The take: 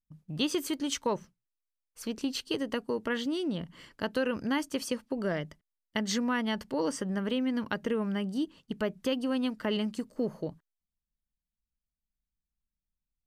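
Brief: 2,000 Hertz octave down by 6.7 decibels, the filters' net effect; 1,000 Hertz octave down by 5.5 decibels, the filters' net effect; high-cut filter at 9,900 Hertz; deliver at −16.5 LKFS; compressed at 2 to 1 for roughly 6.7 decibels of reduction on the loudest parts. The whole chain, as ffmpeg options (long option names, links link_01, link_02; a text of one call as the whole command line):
ffmpeg -i in.wav -af "lowpass=9900,equalizer=frequency=1000:width_type=o:gain=-5,equalizer=frequency=2000:width_type=o:gain=-7,acompressor=threshold=-39dB:ratio=2,volume=23dB" out.wav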